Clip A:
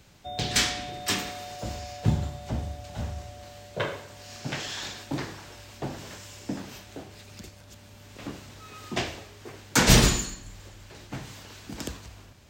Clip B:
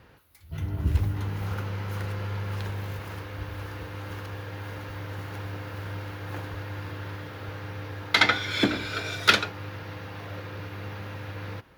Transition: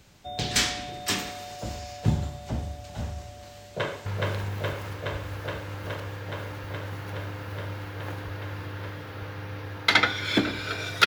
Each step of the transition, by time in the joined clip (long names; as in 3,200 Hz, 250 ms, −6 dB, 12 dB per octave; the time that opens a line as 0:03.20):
clip A
0:03.62–0:04.06: delay throw 420 ms, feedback 85%, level −1.5 dB
0:04.06: continue with clip B from 0:02.32